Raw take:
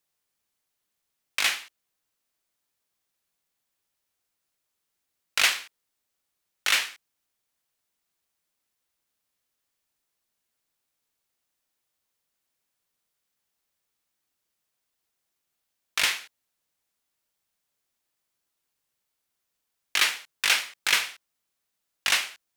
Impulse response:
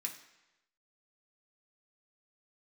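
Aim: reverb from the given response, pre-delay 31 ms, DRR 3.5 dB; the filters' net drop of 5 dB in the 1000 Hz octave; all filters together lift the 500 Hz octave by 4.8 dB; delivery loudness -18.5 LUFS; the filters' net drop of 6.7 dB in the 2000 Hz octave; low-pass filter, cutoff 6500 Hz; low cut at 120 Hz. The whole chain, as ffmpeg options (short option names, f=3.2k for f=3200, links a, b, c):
-filter_complex "[0:a]highpass=120,lowpass=6.5k,equalizer=f=500:t=o:g=8.5,equalizer=f=1k:t=o:g=-6,equalizer=f=2k:t=o:g=-7.5,asplit=2[a][b];[1:a]atrim=start_sample=2205,adelay=31[c];[b][c]afir=irnorm=-1:irlink=0,volume=-2.5dB[d];[a][d]amix=inputs=2:normalize=0,volume=9.5dB"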